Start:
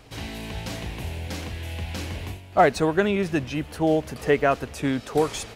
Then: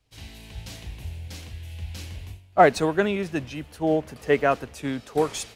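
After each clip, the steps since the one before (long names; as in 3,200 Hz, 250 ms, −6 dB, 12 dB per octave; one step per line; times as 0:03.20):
multiband upward and downward expander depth 70%
level −2.5 dB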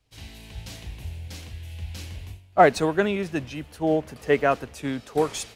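no processing that can be heard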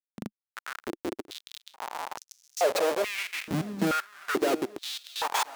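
comparator with hysteresis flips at −31 dBFS
feedback echo with a long and a short gap by turns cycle 1,030 ms, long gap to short 1.5 to 1, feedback 41%, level −17 dB
high-pass on a step sequencer 2.3 Hz 210–5,900 Hz
level −2 dB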